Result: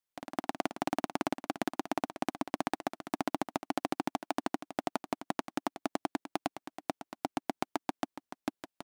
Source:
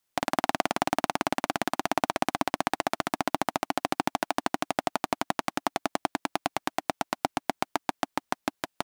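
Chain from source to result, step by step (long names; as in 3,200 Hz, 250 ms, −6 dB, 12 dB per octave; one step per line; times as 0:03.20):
dynamic equaliser 300 Hz, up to +7 dB, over −43 dBFS, Q 0.81
output level in coarse steps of 12 dB
level −7 dB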